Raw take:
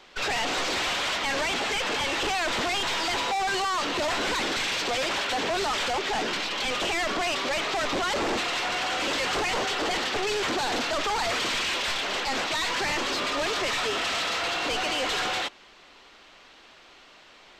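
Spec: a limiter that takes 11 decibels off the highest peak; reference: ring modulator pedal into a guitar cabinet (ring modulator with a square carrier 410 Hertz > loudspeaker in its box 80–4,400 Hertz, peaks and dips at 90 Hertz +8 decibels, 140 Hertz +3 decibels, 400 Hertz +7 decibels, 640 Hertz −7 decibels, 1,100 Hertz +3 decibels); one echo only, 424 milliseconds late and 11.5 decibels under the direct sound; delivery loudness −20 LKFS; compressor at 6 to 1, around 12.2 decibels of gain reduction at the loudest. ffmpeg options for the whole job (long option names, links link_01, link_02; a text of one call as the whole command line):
ffmpeg -i in.wav -af "acompressor=threshold=-40dB:ratio=6,alimiter=level_in=20dB:limit=-24dB:level=0:latency=1,volume=-20dB,aecho=1:1:424:0.266,aeval=exprs='val(0)*sgn(sin(2*PI*410*n/s))':channel_layout=same,highpass=80,equalizer=frequency=90:width_type=q:width=4:gain=8,equalizer=frequency=140:width_type=q:width=4:gain=3,equalizer=frequency=400:width_type=q:width=4:gain=7,equalizer=frequency=640:width_type=q:width=4:gain=-7,equalizer=frequency=1100:width_type=q:width=4:gain=3,lowpass=frequency=4400:width=0.5412,lowpass=frequency=4400:width=1.3066,volume=26.5dB" out.wav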